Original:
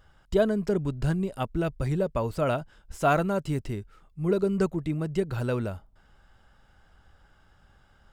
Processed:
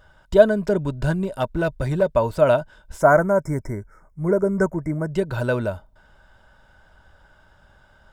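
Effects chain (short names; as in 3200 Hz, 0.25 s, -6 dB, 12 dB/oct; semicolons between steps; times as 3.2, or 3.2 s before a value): 1.24–2.1 hard clip -21 dBFS, distortion -28 dB; small resonant body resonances 610/940/1500/3600 Hz, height 10 dB, ringing for 35 ms; 3.01–5.12 spectral delete 2300–5100 Hz; gain +3.5 dB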